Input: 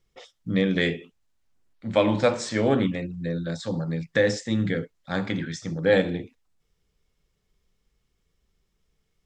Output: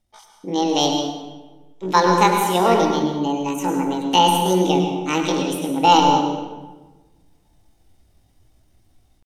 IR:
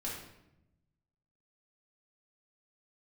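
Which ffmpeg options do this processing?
-filter_complex "[0:a]aeval=exprs='0.473*(cos(1*acos(clip(val(0)/0.473,-1,1)))-cos(1*PI/2))+0.00376*(cos(4*acos(clip(val(0)/0.473,-1,1)))-cos(4*PI/2))':c=same,dynaudnorm=f=540:g=3:m=11dB,asetrate=74167,aresample=44100,atempo=0.594604,asplit=2[a][b];[1:a]atrim=start_sample=2205,asetrate=28224,aresample=44100,adelay=102[c];[b][c]afir=irnorm=-1:irlink=0,volume=-8.5dB[d];[a][d]amix=inputs=2:normalize=0,volume=-1dB"

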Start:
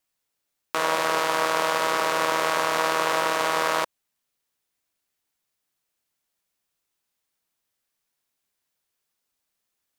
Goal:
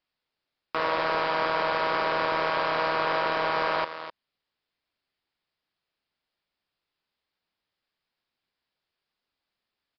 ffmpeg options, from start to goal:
-af "aecho=1:1:255:0.2,aresample=16000,asoftclip=type=tanh:threshold=-16dB,aresample=44100,aresample=11025,aresample=44100"

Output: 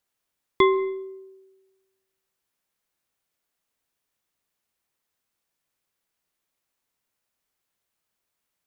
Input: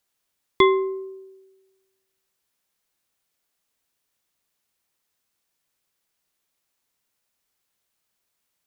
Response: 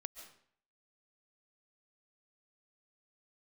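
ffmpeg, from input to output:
-filter_complex "[0:a]asplit=2[a][b];[1:a]atrim=start_sample=2205,lowpass=3.3k[c];[b][c]afir=irnorm=-1:irlink=0,volume=-4dB[d];[a][d]amix=inputs=2:normalize=0,volume=-4.5dB"

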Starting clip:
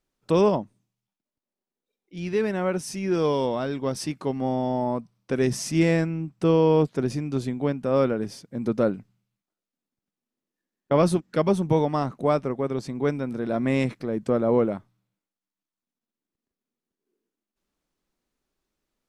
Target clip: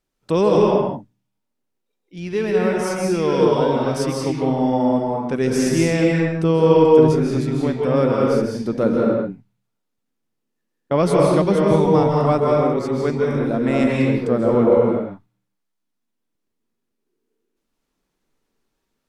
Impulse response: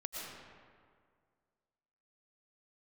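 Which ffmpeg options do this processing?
-filter_complex "[1:a]atrim=start_sample=2205,afade=t=out:st=0.34:d=0.01,atrim=end_sample=15435,asetrate=31752,aresample=44100[a];[0:a][a]afir=irnorm=-1:irlink=0,volume=4.5dB"

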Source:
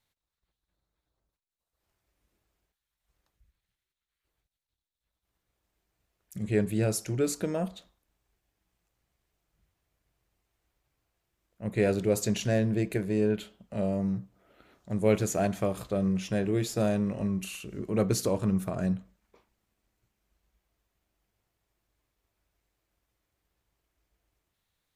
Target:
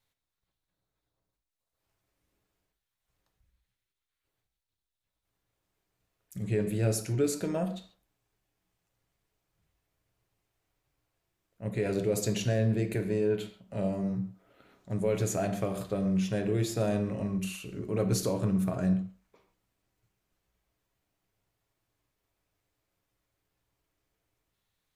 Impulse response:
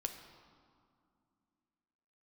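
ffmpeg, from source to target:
-filter_complex "[0:a]alimiter=limit=-19.5dB:level=0:latency=1:release=20[a];[1:a]atrim=start_sample=2205,atrim=end_sample=6615[b];[a][b]afir=irnorm=-1:irlink=0"

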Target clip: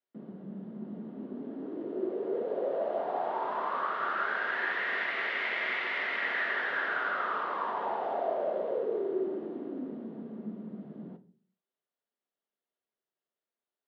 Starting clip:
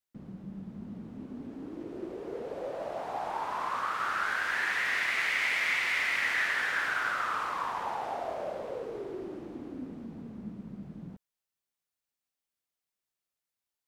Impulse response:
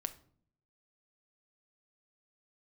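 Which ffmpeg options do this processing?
-filter_complex "[0:a]highpass=f=170:w=0.5412,highpass=f=170:w=1.3066,equalizer=f=380:t=q:w=4:g=10,equalizer=f=600:t=q:w=4:g=8,equalizer=f=2.4k:t=q:w=4:g=-8,lowpass=f=3.4k:w=0.5412,lowpass=f=3.4k:w=1.3066[a];[1:a]atrim=start_sample=2205,asetrate=61740,aresample=44100[b];[a][b]afir=irnorm=-1:irlink=0,volume=3.5dB"

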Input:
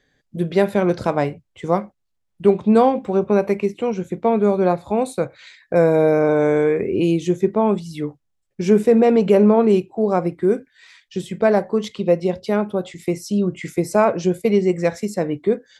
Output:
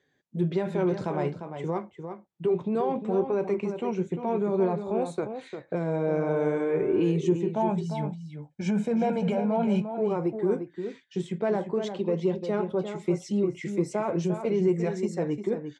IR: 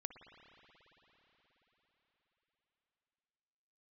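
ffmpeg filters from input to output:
-filter_complex "[0:a]asettb=1/sr,asplit=3[a][b][c];[a]atrim=end=7.534[d];[b]atrim=start=7.53:end=9.92,asetpts=PTS-STARTPTS,afade=t=in:d=0.004:c=qsin,afade=t=out:st=2.386:d=0.004:c=qsin,aecho=1:1:1.3:0.83,atrim=end_sample=105399[e];[c]atrim=start=9.916[f];[d][e]acrossfade=d=0.004:c1=hsin:c2=qsin[g];[g][f]acrossfade=d=0.004:c1=qsin:c2=hsin,alimiter=limit=-12.5dB:level=0:latency=1:release=12,flanger=delay=2:depth=5.7:regen=-53:speed=0.59:shape=triangular,aeval=exprs='0.2*(cos(1*acos(clip(val(0)/0.2,-1,1)))-cos(1*PI/2))+0.00398*(cos(5*acos(clip(val(0)/0.2,-1,1)))-cos(5*PI/2))':c=same,highpass=110,equalizer=f=160:t=q:w=4:g=7,equalizer=f=370:t=q:w=4:g=6,equalizer=f=920:t=q:w=4:g=5,equalizer=f=4.8k:t=q:w=4:g=-5,lowpass=f=8k:w=0.5412,lowpass=f=8k:w=1.3066,asplit=2[h][i];[i]adelay=349.9,volume=-8dB,highshelf=f=4k:g=-7.87[j];[h][j]amix=inputs=2:normalize=0,volume=-4.5dB"

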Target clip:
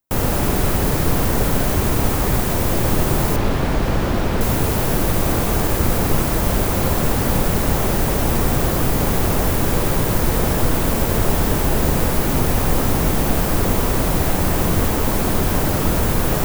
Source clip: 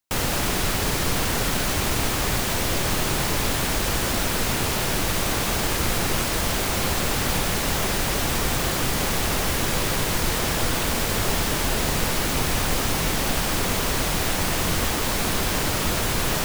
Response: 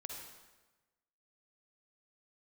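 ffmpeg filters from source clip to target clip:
-filter_complex "[0:a]equalizer=f=4k:w=0.32:g=-12.5,asplit=2[a][b];[1:a]atrim=start_sample=2205[c];[b][c]afir=irnorm=-1:irlink=0,volume=2dB[d];[a][d]amix=inputs=2:normalize=0,asettb=1/sr,asplit=3[e][f][g];[e]atrim=end=3.364[h];[f]atrim=start=3.36:end=4.41,asetpts=PTS-STARTPTS,afade=t=in:d=0.004:c=qsin,afade=t=out:st=1.046:d=0.004:c=qsin,acrossover=split=5100[i][j];[j]acompressor=threshold=-41dB:ratio=4:attack=1:release=60[k];[i][k]amix=inputs=2:normalize=0[l];[g]atrim=start=4.406[m];[h][l]acrossfade=d=0.004:c1=hsin:c2=qsin[n];[n][m]acrossfade=d=0.004:c1=qsin:c2=hsin,volume=3dB"

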